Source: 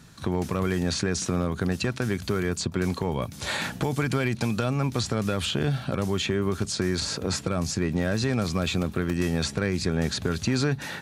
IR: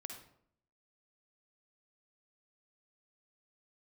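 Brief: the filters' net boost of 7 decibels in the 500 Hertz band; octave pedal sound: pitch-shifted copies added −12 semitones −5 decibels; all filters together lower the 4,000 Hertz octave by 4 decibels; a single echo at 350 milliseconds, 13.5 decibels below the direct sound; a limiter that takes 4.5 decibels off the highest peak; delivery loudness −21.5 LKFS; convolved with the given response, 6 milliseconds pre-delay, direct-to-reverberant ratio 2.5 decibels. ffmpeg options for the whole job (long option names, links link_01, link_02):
-filter_complex "[0:a]equalizer=frequency=500:width_type=o:gain=9,equalizer=frequency=4000:width_type=o:gain=-5,alimiter=limit=-13.5dB:level=0:latency=1,aecho=1:1:350:0.211,asplit=2[link_01][link_02];[1:a]atrim=start_sample=2205,adelay=6[link_03];[link_02][link_03]afir=irnorm=-1:irlink=0,volume=1dB[link_04];[link_01][link_04]amix=inputs=2:normalize=0,asplit=2[link_05][link_06];[link_06]asetrate=22050,aresample=44100,atempo=2,volume=-5dB[link_07];[link_05][link_07]amix=inputs=2:normalize=0,volume=1dB"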